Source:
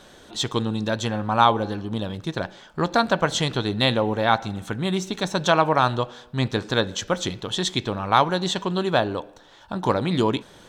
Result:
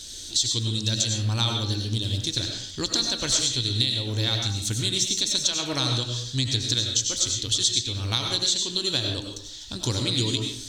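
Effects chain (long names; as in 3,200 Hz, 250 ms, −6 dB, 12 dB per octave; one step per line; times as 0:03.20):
drawn EQ curve 120 Hz 0 dB, 170 Hz −20 dB, 270 Hz −7 dB, 700 Hz −23 dB, 1,200 Hz −21 dB, 2,700 Hz −4 dB, 4,500 Hz +11 dB, 7,400 Hz +12 dB, 11,000 Hz +4 dB
downward compressor 5 to 1, threshold −29 dBFS, peak gain reduction 14.5 dB
convolution reverb RT60 0.55 s, pre-delay 60 ms, DRR 2 dB
level +7 dB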